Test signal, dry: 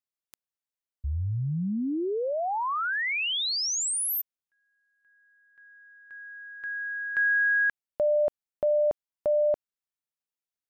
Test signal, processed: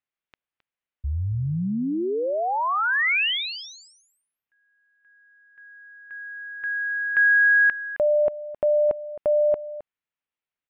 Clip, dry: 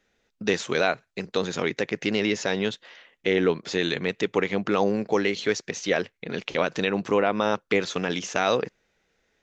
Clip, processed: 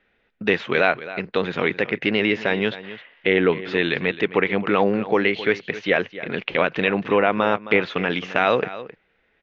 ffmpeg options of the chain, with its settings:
ffmpeg -i in.wav -af "lowpass=frequency=2800:width=0.5412,lowpass=frequency=2800:width=1.3066,highshelf=frequency=2000:gain=8.5,aecho=1:1:265:0.178,volume=3dB" out.wav

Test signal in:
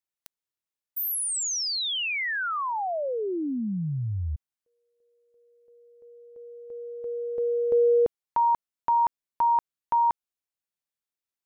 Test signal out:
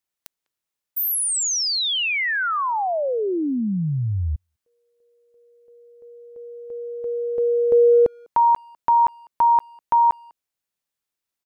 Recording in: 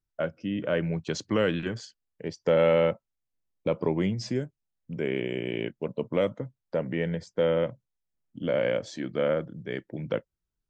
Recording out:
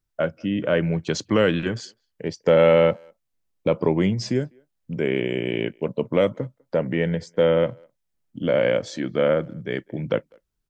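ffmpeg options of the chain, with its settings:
ffmpeg -i in.wav -filter_complex "[0:a]asplit=2[link_01][link_02];[link_02]adelay=200,highpass=300,lowpass=3400,asoftclip=type=hard:threshold=-20dB,volume=-29dB[link_03];[link_01][link_03]amix=inputs=2:normalize=0,volume=6dB" out.wav

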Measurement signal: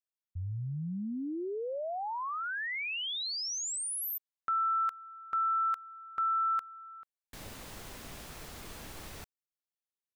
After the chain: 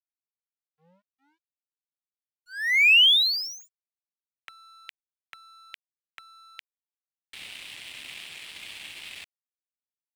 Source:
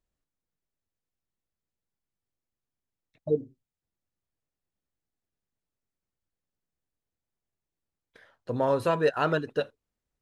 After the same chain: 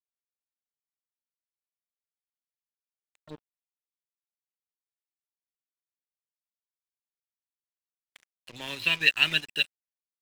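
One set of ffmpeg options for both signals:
ffmpeg -i in.wav -filter_complex "[0:a]acrossover=split=320|1200[link_01][link_02][link_03];[link_02]acompressor=threshold=-46dB:ratio=4:attack=54:release=448:knee=6:detection=rms[link_04];[link_01][link_04][link_03]amix=inputs=3:normalize=0,highpass=frequency=100:width=0.5412,highpass=frequency=100:width=1.3066,equalizer=frequency=130:width_type=q:width=4:gain=-7,equalizer=frequency=230:width_type=q:width=4:gain=-5,equalizer=frequency=490:width_type=q:width=4:gain=-7,lowpass=frequency=2800:width=0.5412,lowpass=frequency=2800:width=1.3066,aexciter=amount=15.7:drive=9:freq=2200,aeval=exprs='sgn(val(0))*max(abs(val(0))-0.015,0)':channel_layout=same,volume=-3dB" out.wav

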